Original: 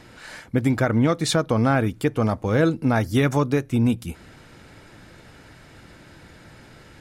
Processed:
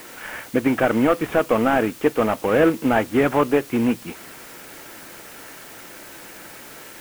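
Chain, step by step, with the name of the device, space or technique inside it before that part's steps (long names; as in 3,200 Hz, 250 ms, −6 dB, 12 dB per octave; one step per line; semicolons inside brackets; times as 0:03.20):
army field radio (band-pass filter 310–3,200 Hz; variable-slope delta modulation 16 kbit/s; white noise bed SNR 21 dB)
level +7 dB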